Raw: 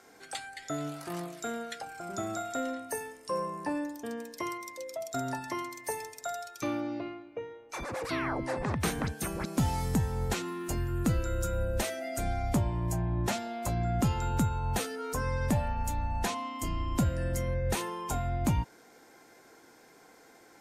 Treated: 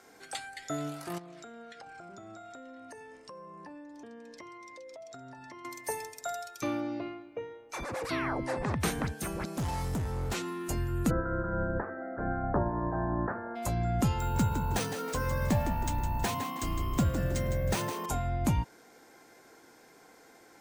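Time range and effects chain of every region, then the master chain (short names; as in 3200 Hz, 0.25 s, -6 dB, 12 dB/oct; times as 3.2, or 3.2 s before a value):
1.18–5.65 air absorption 98 m + compressor 10:1, threshold -44 dBFS
9.06–10.35 high shelf 7100 Hz -2.5 dB + hard clip -29.5 dBFS
11.09–13.55 spectral limiter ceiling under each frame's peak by 15 dB + Chebyshev low-pass 1700 Hz, order 6
14.19–18.06 frequency-shifting echo 0.159 s, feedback 36%, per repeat +64 Hz, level -9 dB + careless resampling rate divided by 3×, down none, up hold
whole clip: dry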